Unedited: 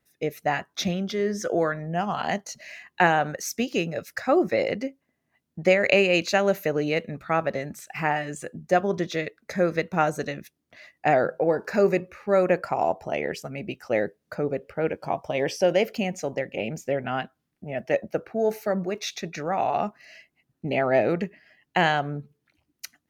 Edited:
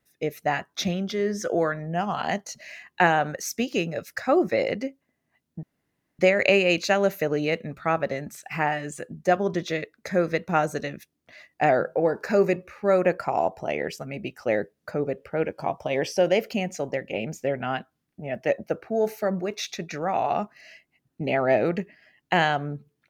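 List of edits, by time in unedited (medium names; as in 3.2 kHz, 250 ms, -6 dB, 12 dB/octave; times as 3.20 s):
5.63 s: insert room tone 0.56 s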